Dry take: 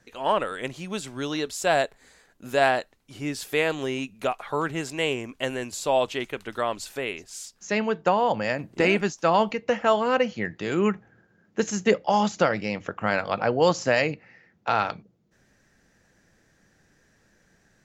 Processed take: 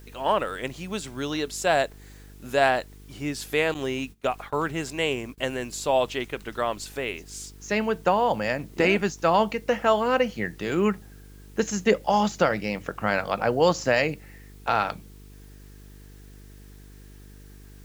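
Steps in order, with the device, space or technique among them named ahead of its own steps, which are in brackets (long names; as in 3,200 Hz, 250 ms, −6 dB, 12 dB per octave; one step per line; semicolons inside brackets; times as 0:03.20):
video cassette with head-switching buzz (hum with harmonics 50 Hz, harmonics 9, −47 dBFS −6 dB per octave; white noise bed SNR 32 dB)
0:03.74–0:05.38: noise gate −37 dBFS, range −21 dB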